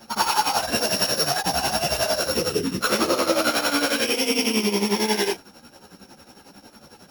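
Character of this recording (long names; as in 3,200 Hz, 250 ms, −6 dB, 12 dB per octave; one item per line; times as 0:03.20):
a buzz of ramps at a fixed pitch in blocks of 8 samples
tremolo triangle 11 Hz, depth 85%
a shimmering, thickened sound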